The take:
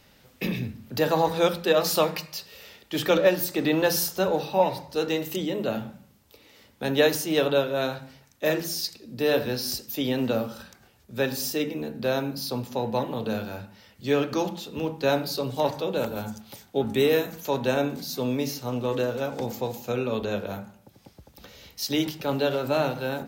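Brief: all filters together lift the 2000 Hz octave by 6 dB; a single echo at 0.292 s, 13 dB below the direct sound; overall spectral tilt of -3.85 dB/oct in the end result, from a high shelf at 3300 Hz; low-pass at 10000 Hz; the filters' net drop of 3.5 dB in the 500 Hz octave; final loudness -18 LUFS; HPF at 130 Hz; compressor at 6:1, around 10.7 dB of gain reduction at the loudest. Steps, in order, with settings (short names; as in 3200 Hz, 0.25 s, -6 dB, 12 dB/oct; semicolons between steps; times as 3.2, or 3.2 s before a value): HPF 130 Hz; LPF 10000 Hz; bell 500 Hz -4.5 dB; bell 2000 Hz +5.5 dB; high shelf 3300 Hz +7.5 dB; compressor 6:1, threshold -28 dBFS; echo 0.292 s -13 dB; gain +14 dB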